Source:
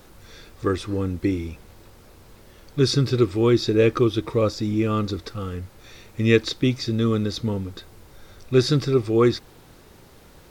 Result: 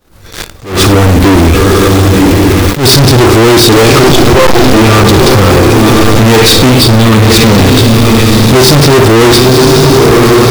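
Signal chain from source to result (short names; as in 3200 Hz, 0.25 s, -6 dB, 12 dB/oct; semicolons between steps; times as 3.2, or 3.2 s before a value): 4.03–4.73 monotone LPC vocoder at 8 kHz 130 Hz; 6.69–7.3 fixed phaser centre 1900 Hz, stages 6; on a send: diffused feedback echo 1.079 s, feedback 41%, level -10 dB; on the sum: Schroeder reverb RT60 0.5 s, combs from 28 ms, DRR 8 dB; expander -38 dBFS; sample leveller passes 5; soft clip -30 dBFS, distortion -6 dB; bell 80 Hz +3 dB 0.87 oct; maximiser +33 dB; attack slew limiter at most 130 dB/s; gain -1 dB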